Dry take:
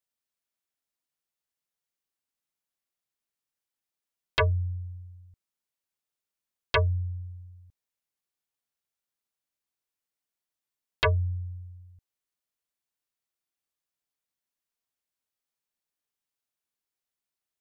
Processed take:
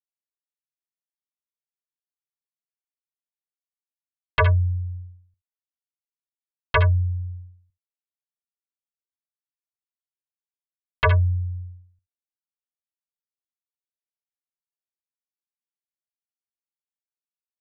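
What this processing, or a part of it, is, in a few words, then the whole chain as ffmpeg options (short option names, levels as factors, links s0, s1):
hearing-loss simulation: -af "lowpass=2000,equalizer=f=320:w=0.62:g=-9,aecho=1:1:65|75:0.224|0.251,agate=range=0.0224:threshold=0.00891:ratio=3:detection=peak,volume=2.66"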